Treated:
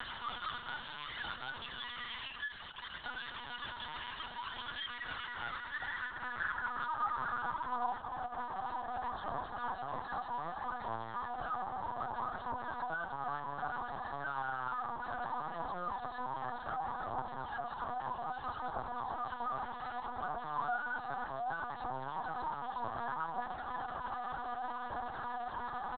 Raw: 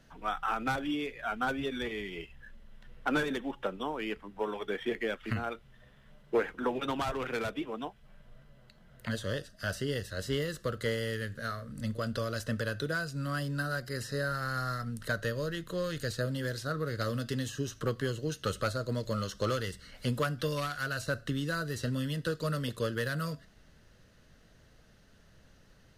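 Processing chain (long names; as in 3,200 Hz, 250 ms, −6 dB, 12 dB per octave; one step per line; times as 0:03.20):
sign of each sample alone
low-shelf EQ 110 Hz −10.5 dB
comb filter 4.1 ms, depth 77%
brickwall limiter −30 dBFS, peak gain reduction 4 dB
band-pass filter sweep 2,800 Hz → 840 Hz, 0:04.81–0:08.26
hard clipping −35.5 dBFS, distortion −27 dB
phase shifter 0.64 Hz, delay 2.6 ms, feedback 37%
phaser with its sweep stopped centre 1,000 Hz, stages 4
echo with shifted repeats 83 ms, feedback 64%, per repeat −40 Hz, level −20 dB
linear-prediction vocoder at 8 kHz pitch kept
multiband upward and downward compressor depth 40%
level +9.5 dB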